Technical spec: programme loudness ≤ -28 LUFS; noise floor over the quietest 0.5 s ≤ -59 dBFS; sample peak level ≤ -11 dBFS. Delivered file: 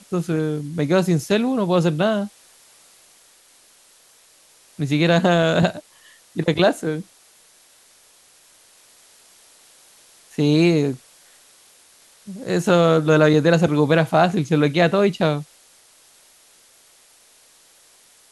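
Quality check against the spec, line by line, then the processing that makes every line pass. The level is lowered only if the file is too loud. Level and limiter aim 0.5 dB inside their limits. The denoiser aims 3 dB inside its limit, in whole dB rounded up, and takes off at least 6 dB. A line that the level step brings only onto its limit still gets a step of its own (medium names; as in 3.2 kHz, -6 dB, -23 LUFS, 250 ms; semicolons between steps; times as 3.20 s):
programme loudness -19.0 LUFS: fail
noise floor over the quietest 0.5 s -53 dBFS: fail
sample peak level -4.0 dBFS: fail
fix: trim -9.5 dB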